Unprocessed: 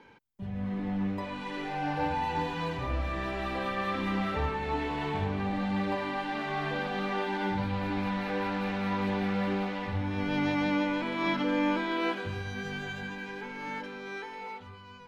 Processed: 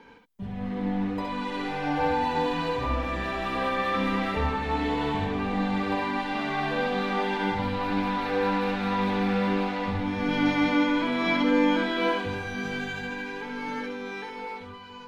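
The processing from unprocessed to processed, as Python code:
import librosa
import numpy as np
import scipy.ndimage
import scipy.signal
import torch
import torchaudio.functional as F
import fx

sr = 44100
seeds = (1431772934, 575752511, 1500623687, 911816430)

y = x + 0.31 * np.pad(x, (int(4.3 * sr / 1000.0), 0))[:len(x)]
y = fx.echo_multitap(y, sr, ms=(65, 69, 672), db=(-7.5, -6.5, -19.0))
y = y * 10.0 ** (3.0 / 20.0)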